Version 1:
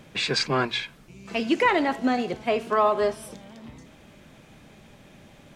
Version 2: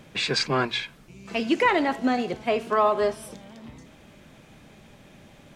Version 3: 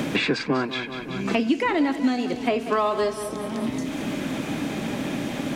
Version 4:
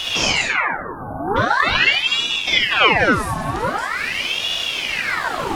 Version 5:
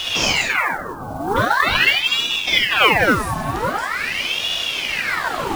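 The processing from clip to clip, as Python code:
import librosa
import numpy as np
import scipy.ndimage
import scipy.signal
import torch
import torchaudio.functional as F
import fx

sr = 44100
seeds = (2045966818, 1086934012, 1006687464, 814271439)

y1 = x
y2 = fx.peak_eq(y1, sr, hz=280.0, db=10.5, octaves=0.45)
y2 = fx.echo_feedback(y2, sr, ms=187, feedback_pct=44, wet_db=-14)
y2 = fx.band_squash(y2, sr, depth_pct=100)
y2 = y2 * librosa.db_to_amplitude(-1.5)
y3 = fx.spec_erase(y2, sr, start_s=0.48, length_s=0.88, low_hz=1100.0, high_hz=10000.0)
y3 = fx.rev_freeverb(y3, sr, rt60_s=0.66, hf_ratio=0.45, predelay_ms=5, drr_db=-4.5)
y3 = fx.ring_lfo(y3, sr, carrier_hz=1800.0, swing_pct=75, hz=0.44)
y3 = y3 * librosa.db_to_amplitude(3.0)
y4 = fx.mod_noise(y3, sr, seeds[0], snr_db=23)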